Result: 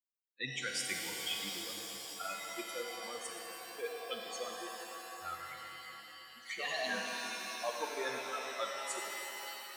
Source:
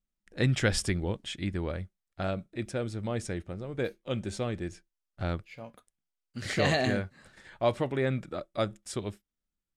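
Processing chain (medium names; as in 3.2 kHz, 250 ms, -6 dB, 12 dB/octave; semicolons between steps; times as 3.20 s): expander on every frequency bin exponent 3; high-pass 770 Hz 12 dB/octave; peak limiter -29 dBFS, peak gain reduction 10 dB; reverse; compression, threshold -48 dBFS, peak gain reduction 13.5 dB; reverse; pitch-shifted reverb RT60 3.5 s, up +7 st, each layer -2 dB, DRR 1 dB; trim +11.5 dB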